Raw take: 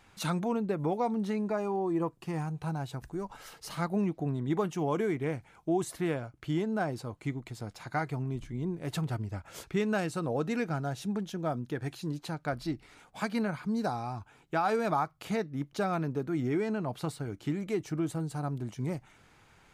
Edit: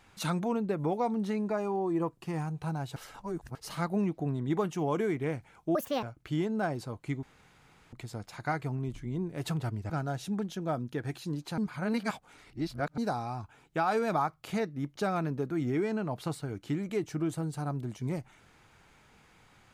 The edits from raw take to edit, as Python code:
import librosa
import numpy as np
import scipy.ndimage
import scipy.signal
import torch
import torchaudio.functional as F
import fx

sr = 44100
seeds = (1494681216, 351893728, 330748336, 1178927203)

y = fx.edit(x, sr, fx.reverse_span(start_s=2.96, length_s=0.59),
    fx.speed_span(start_s=5.75, length_s=0.45, speed=1.62),
    fx.insert_room_tone(at_s=7.4, length_s=0.7),
    fx.cut(start_s=9.37, length_s=1.3),
    fx.reverse_span(start_s=12.35, length_s=1.4), tone=tone)